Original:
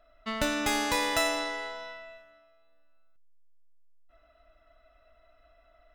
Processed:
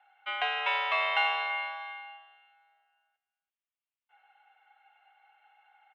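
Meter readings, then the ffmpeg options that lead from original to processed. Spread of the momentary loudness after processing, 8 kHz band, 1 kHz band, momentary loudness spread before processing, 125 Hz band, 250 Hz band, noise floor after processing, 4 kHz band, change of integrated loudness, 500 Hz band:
15 LU, under -30 dB, +2.0 dB, 15 LU, under -40 dB, under -35 dB, under -85 dBFS, -1.0 dB, 0.0 dB, -7.5 dB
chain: -af "aecho=1:1:335:0.158,highpass=f=460:t=q:w=0.5412,highpass=f=460:t=q:w=1.307,lowpass=f=3.1k:t=q:w=0.5176,lowpass=f=3.1k:t=q:w=0.7071,lowpass=f=3.1k:t=q:w=1.932,afreqshift=150,aexciter=amount=1.3:drive=6.8:freq=2.4k"

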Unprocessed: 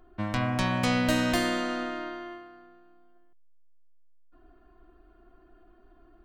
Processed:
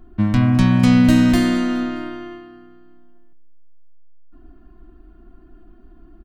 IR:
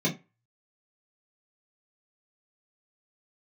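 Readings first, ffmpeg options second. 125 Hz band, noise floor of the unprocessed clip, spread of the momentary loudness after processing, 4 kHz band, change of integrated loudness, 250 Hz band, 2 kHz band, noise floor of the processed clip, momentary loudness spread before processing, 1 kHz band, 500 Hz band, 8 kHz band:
+14.5 dB, -59 dBFS, 16 LU, +3.5 dB, +12.0 dB, +14.5 dB, +3.5 dB, -48 dBFS, 15 LU, +2.5 dB, +3.0 dB, +3.5 dB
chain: -filter_complex "[0:a]lowshelf=f=340:t=q:w=1.5:g=10,asplit=2[a][b];[b]aecho=0:1:209|418|627:0.1|0.046|0.0212[c];[a][c]amix=inputs=2:normalize=0,volume=3.5dB"

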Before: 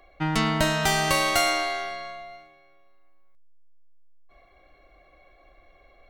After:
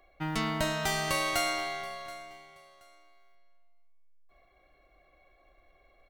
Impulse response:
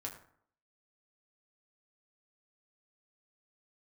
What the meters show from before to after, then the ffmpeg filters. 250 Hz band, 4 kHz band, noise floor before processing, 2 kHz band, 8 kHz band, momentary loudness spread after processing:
-7.5 dB, -7.5 dB, -58 dBFS, -7.0 dB, -7.0 dB, 15 LU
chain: -filter_complex "[0:a]acrusher=bits=9:mode=log:mix=0:aa=0.000001,aecho=1:1:727|1454:0.1|0.027,asplit=2[a][b];[1:a]atrim=start_sample=2205,asetrate=57330,aresample=44100,highshelf=f=10k:g=10.5[c];[b][c]afir=irnorm=-1:irlink=0,volume=-10dB[d];[a][d]amix=inputs=2:normalize=0,volume=-8.5dB"

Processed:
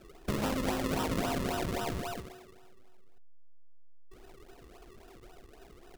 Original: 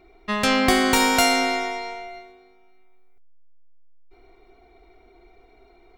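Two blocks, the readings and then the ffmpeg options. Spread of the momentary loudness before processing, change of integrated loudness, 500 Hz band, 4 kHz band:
17 LU, -13.5 dB, -10.0 dB, -17.0 dB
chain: -af "acrusher=samples=39:mix=1:aa=0.000001:lfo=1:lforange=39:lforate=3.7,acompressor=threshold=-29dB:ratio=8"

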